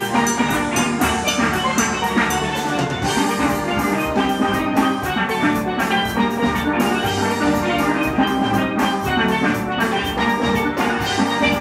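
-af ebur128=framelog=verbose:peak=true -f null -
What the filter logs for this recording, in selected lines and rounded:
Integrated loudness:
  I:         -18.6 LUFS
  Threshold: -28.6 LUFS
Loudness range:
  LRA:         0.5 LU
  Threshold: -38.7 LUFS
  LRA low:   -19.0 LUFS
  LRA high:  -18.4 LUFS
True peak:
  Peak:       -4.6 dBFS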